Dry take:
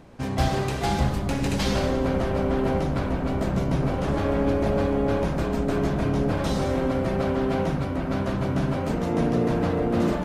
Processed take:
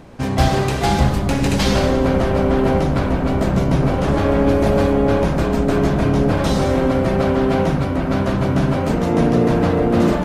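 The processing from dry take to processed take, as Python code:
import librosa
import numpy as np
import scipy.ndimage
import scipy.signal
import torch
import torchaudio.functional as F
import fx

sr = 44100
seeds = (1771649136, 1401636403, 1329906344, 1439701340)

y = fx.high_shelf(x, sr, hz=fx.line((4.49, 7900.0), (4.91, 5100.0)), db=6.5, at=(4.49, 4.91), fade=0.02)
y = y * 10.0 ** (7.5 / 20.0)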